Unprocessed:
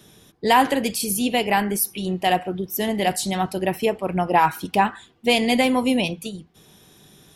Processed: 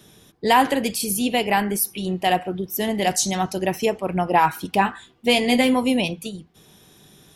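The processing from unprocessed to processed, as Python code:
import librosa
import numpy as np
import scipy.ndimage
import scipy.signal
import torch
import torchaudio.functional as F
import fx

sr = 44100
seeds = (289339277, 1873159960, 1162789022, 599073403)

y = fx.peak_eq(x, sr, hz=6200.0, db=14.0, octaves=0.37, at=(3.02, 4.0))
y = fx.doubler(y, sr, ms=16.0, db=-7.5, at=(4.79, 5.74))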